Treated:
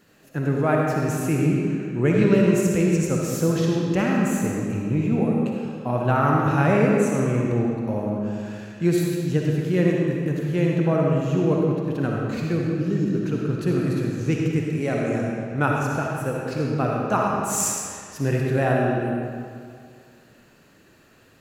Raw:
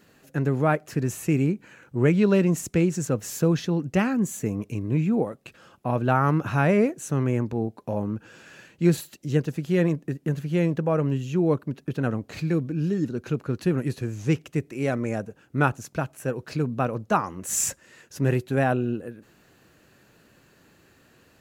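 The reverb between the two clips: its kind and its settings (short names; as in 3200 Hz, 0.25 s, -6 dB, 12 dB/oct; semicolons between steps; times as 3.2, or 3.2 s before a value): digital reverb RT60 2.2 s, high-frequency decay 0.8×, pre-delay 20 ms, DRR -2 dB; gain -1 dB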